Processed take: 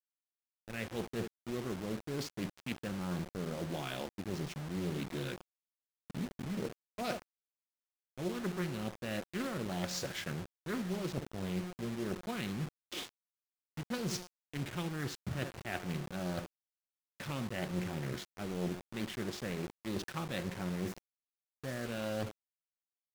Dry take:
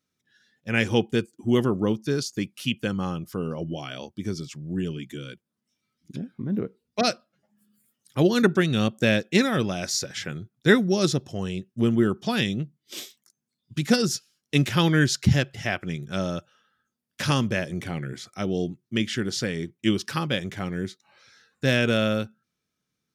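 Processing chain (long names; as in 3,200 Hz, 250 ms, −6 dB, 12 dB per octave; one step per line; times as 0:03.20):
running median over 5 samples
on a send: tape delay 70 ms, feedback 20%, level −16 dB, low-pass 1,100 Hz
on the sum: dynamic equaliser 5,100 Hz, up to −4 dB, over −47 dBFS, Q 1.8
reversed playback
downward compressor 20 to 1, threshold −34 dBFS, peak gain reduction 23.5 dB
reversed playback
tuned comb filter 180 Hz, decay 1 s, mix 70%
slack as between gear wheels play −56 dBFS
time-frequency box erased 0:20.74–0:21.86, 2,200–5,300 Hz
bit reduction 9 bits
highs frequency-modulated by the lows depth 0.52 ms
level +9.5 dB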